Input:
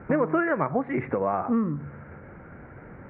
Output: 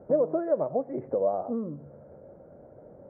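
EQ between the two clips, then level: resonant low-pass 590 Hz, resonance Q 4.7; bass shelf 94 Hz -7.5 dB; -8.5 dB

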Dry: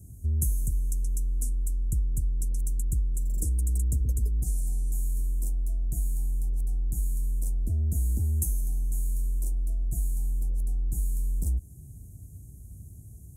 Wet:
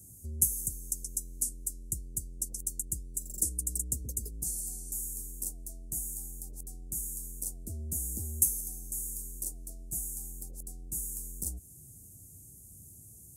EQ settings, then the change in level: high-pass 350 Hz 6 dB/octave; resonant high shelf 1.7 kHz +7 dB, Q 1.5; 0.0 dB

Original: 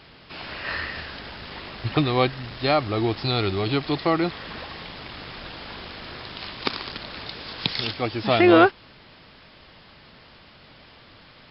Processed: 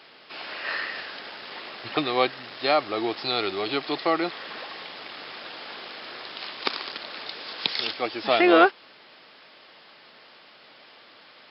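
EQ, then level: high-pass 380 Hz 12 dB/octave; band-stop 980 Hz, Q 26; 0.0 dB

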